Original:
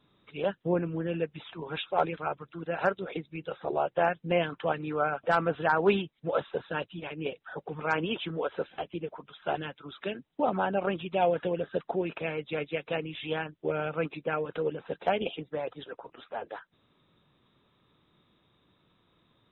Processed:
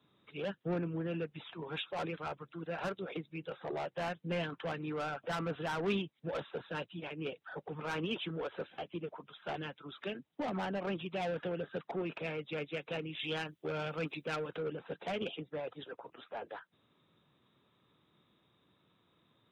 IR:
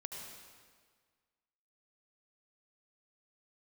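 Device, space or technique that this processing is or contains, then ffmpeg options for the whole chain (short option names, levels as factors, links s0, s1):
one-band saturation: -filter_complex "[0:a]highpass=87,acrossover=split=260|2600[s0][s1][s2];[s1]asoftclip=type=tanh:threshold=0.0266[s3];[s0][s3][s2]amix=inputs=3:normalize=0,asettb=1/sr,asplit=3[s4][s5][s6];[s4]atrim=end=13.194[s7];[s5]atrim=start=13.19:end=14.51,asetpts=PTS-STARTPTS,afade=t=in:d=0.004:c=qsin,afade=t=out:st=1.316:d=0.004:c=qsin,highshelf=f=3600:g=11.5[s8];[s6]atrim=start=14.506[s9];[s7][s8]acrossfade=d=0.004:c1=hsin:c2=qsin[s10];[s10][s9]acrossfade=d=0.004:c1=qsin:c2=hsin,volume=0.668"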